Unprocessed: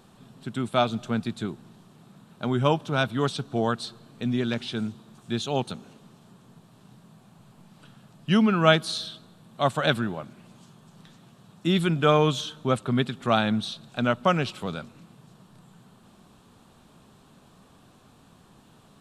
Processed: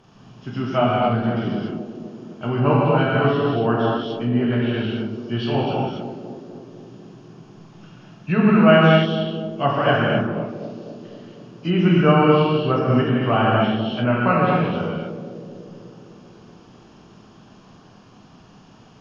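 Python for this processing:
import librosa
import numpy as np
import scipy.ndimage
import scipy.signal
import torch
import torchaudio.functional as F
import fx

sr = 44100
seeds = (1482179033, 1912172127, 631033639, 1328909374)

p1 = fx.freq_compress(x, sr, knee_hz=2100.0, ratio=1.5)
p2 = p1 + fx.echo_banded(p1, sr, ms=250, feedback_pct=73, hz=330.0, wet_db=-8, dry=0)
p3 = fx.rev_gated(p2, sr, seeds[0], gate_ms=310, shape='flat', drr_db=-5.5)
y = fx.env_lowpass_down(p3, sr, base_hz=2600.0, full_db=-17.0)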